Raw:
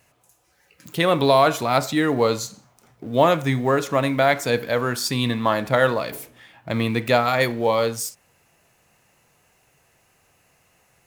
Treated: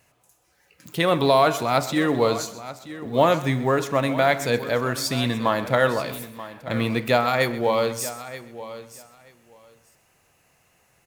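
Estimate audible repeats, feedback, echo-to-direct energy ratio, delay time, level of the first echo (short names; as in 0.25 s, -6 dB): 6, no steady repeat, -12.5 dB, 0.129 s, -16.5 dB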